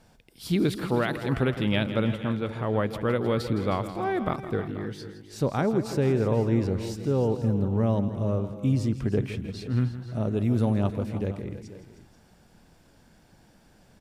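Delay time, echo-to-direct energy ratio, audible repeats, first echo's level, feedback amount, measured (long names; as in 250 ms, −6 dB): 164 ms, −8.5 dB, 4, −13.0 dB, repeats not evenly spaced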